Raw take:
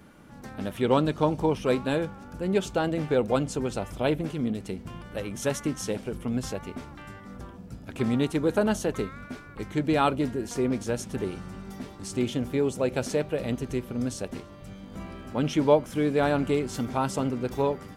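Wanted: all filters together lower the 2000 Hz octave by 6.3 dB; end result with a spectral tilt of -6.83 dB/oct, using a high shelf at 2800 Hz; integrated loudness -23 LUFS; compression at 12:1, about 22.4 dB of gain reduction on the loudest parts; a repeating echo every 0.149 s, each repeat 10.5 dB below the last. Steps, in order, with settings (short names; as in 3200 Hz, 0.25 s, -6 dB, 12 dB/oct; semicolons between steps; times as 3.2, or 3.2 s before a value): bell 2000 Hz -7 dB; high shelf 2800 Hz -4.5 dB; compressor 12:1, threshold -38 dBFS; feedback echo 0.149 s, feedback 30%, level -10.5 dB; gain +20 dB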